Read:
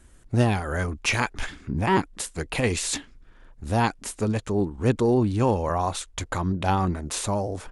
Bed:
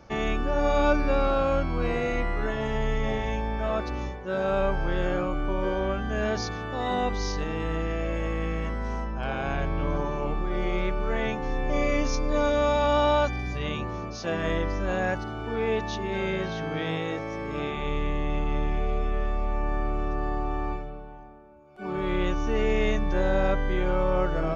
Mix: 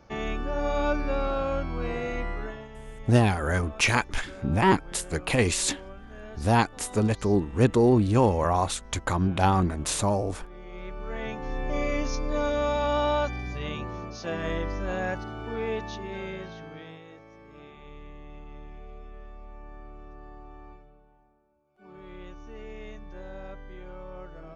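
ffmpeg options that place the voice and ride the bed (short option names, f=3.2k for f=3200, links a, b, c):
-filter_complex "[0:a]adelay=2750,volume=1dB[a];[1:a]volume=9.5dB,afade=t=out:st=2.31:d=0.37:silence=0.237137,afade=t=in:st=10.66:d=0.95:silence=0.211349,afade=t=out:st=15.51:d=1.5:silence=0.188365[b];[a][b]amix=inputs=2:normalize=0"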